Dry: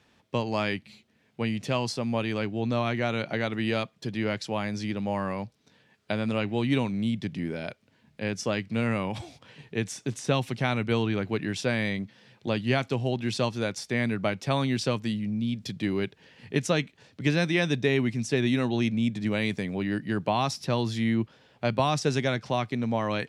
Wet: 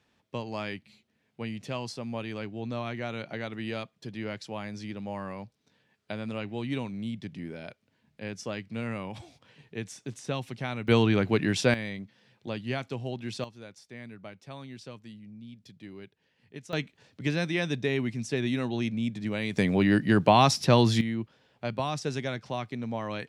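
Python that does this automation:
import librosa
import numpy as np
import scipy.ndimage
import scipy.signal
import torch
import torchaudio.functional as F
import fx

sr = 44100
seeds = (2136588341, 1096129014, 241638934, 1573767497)

y = fx.gain(x, sr, db=fx.steps((0.0, -7.0), (10.88, 4.0), (11.74, -7.0), (13.44, -17.0), (16.73, -4.0), (19.56, 6.5), (21.01, -6.0)))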